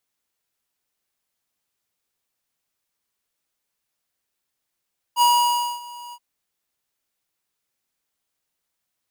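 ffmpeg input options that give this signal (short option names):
-f lavfi -i "aevalsrc='0.178*(2*lt(mod(962*t,1),0.5)-1)':d=1.025:s=44100,afade=t=in:d=0.055,afade=t=out:st=0.055:d=0.582:silence=0.075,afade=t=out:st=0.97:d=0.055"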